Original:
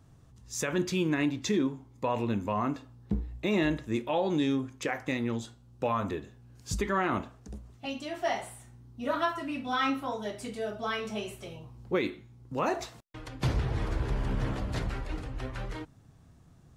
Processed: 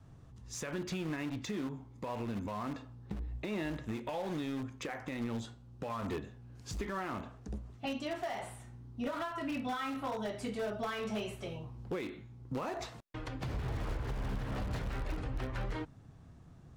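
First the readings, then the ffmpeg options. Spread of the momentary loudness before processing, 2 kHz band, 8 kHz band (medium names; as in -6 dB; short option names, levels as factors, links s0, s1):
16 LU, -7.5 dB, -7.5 dB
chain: -filter_complex "[0:a]asplit=2[s0][s1];[s1]aeval=exprs='(mod(26.6*val(0)+1,2)-1)/26.6':c=same,volume=0.335[s2];[s0][s2]amix=inputs=2:normalize=0,adynamicequalizer=threshold=0.00562:dfrequency=340:dqfactor=3:tfrequency=340:tqfactor=3:attack=5:release=100:ratio=0.375:range=3:mode=cutabove:tftype=bell,acompressor=threshold=0.0282:ratio=6,alimiter=level_in=1.41:limit=0.0631:level=0:latency=1:release=103,volume=0.708,aemphasis=mode=reproduction:type=cd,volume=0.891"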